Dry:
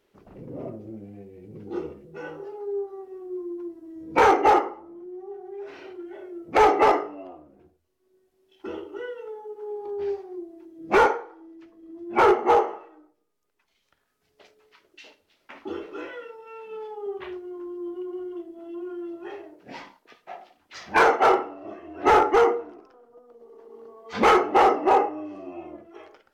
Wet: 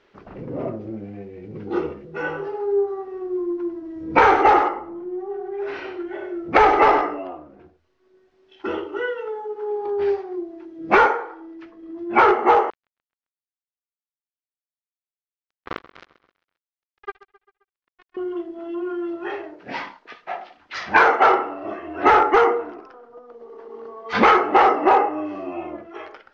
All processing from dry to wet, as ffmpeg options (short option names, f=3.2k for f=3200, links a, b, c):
-filter_complex "[0:a]asettb=1/sr,asplit=3[a][b][c];[a]atrim=end=2.204[d];[b]atrim=start=2.2:end=7.19,asetpts=PTS-STARTPTS,afade=t=in:d=0.004:c=qsin,afade=t=out:st=4.986:d=0.004:c=qsin,lowshelf=f=130:g=7,aecho=1:1:97:0.335,atrim=end_sample=220059[e];[c]atrim=start=7.186[f];[d][e]acrossfade=d=0.004:c1=hsin:c2=qsin[g];[g][f]acrossfade=d=0.004:c1=qsin:c2=hsin,asettb=1/sr,asplit=3[h][i][j];[h]atrim=end=12.704[k];[i]atrim=start=12.7:end=18.17,asetpts=PTS-STARTPTS,afade=t=in:d=0.004:c=qsin,afade=t=out:st=5.466:d=0.004:c=qsin,acrusher=bits=3:mix=0:aa=0.5,aecho=1:1:132|264|396|528:0.126|0.0667|0.0354|0.0187,atrim=end_sample=241227[l];[j]atrim=start=18.166[m];[k][l]acrossfade=d=0.004:c1=hsin:c2=qsin[n];[n][m]acrossfade=d=0.004:c1=qsin:c2=hsin,lowpass=f=5.6k:w=0.5412,lowpass=f=5.6k:w=1.3066,equalizer=f=1.5k:t=o:w=1.8:g=7,acompressor=threshold=-20dB:ratio=3,volume=6.5dB"